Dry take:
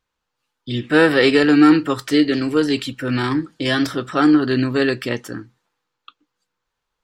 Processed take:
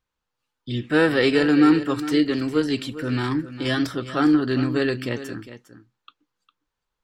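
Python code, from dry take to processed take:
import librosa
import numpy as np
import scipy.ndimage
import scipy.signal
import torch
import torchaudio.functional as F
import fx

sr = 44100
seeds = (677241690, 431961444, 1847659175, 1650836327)

p1 = fx.low_shelf(x, sr, hz=200.0, db=4.5)
p2 = p1 + fx.echo_single(p1, sr, ms=405, db=-13.5, dry=0)
y = p2 * 10.0 ** (-5.5 / 20.0)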